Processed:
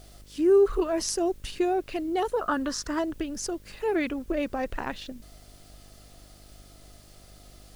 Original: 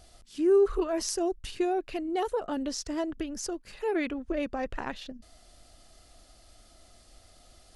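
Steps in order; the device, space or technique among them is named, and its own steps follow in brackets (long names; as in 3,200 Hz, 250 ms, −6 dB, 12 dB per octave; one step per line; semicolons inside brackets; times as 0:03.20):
0:02.41–0:02.99: flat-topped bell 1,300 Hz +13 dB 1 octave
video cassette with head-switching buzz (hum with harmonics 50 Hz, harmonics 12, −56 dBFS −6 dB per octave; white noise bed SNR 33 dB)
level +2.5 dB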